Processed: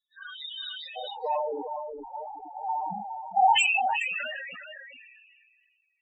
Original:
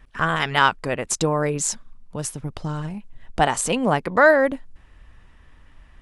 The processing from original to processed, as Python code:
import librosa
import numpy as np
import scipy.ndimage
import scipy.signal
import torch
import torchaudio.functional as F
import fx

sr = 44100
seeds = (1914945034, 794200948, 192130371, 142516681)

y = fx.phase_scramble(x, sr, seeds[0], window_ms=100)
y = fx.rider(y, sr, range_db=4, speed_s=0.5)
y = fx.leveller(y, sr, passes=2)
y = fx.bandpass_q(y, sr, hz=fx.steps((0.0, 3800.0), (0.96, 820.0), (3.54, 2600.0)), q=7.2)
y = 10.0 ** (-14.0 / 20.0) * np.tanh(y / 10.0 ** (-14.0 / 20.0))
y = fx.spec_topn(y, sr, count=4)
y = fx.air_absorb(y, sr, metres=140.0)
y = y + 10.0 ** (-7.5 / 20.0) * np.pad(y, (int(412 * sr / 1000.0), 0))[:len(y)]
y = fx.sustainer(y, sr, db_per_s=28.0)
y = y * 10.0 ** (2.0 / 20.0)